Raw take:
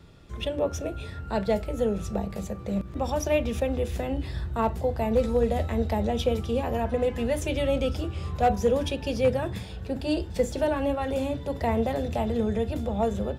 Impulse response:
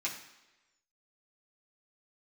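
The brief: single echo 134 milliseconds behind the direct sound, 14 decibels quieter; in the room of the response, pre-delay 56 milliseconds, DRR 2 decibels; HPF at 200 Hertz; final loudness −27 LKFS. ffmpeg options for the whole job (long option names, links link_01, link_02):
-filter_complex "[0:a]highpass=200,aecho=1:1:134:0.2,asplit=2[link_01][link_02];[1:a]atrim=start_sample=2205,adelay=56[link_03];[link_02][link_03]afir=irnorm=-1:irlink=0,volume=-5.5dB[link_04];[link_01][link_04]amix=inputs=2:normalize=0,volume=0.5dB"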